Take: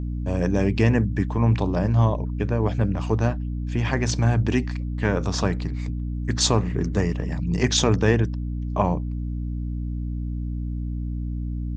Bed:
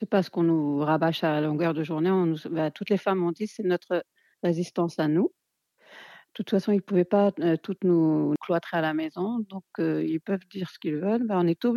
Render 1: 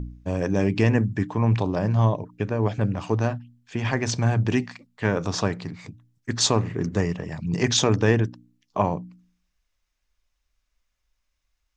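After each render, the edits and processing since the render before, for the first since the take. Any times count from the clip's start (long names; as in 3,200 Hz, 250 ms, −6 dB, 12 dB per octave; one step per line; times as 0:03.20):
hum removal 60 Hz, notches 5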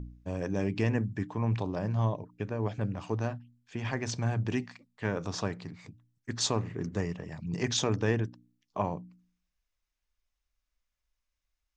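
level −8.5 dB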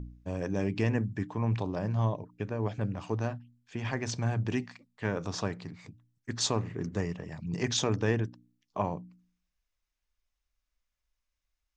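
no processing that can be heard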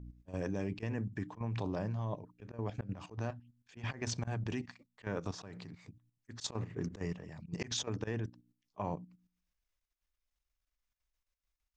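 volume swells 112 ms
output level in coarse steps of 12 dB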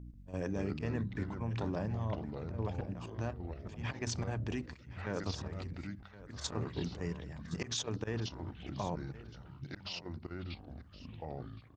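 delay with pitch and tempo change per echo 138 ms, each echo −4 semitones, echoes 3, each echo −6 dB
single-tap delay 1,068 ms −17 dB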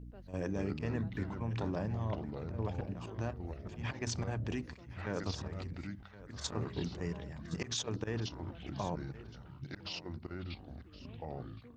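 mix in bed −33.5 dB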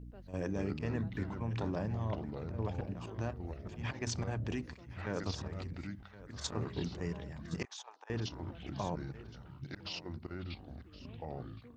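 0:07.65–0:08.10: four-pole ladder high-pass 770 Hz, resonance 70%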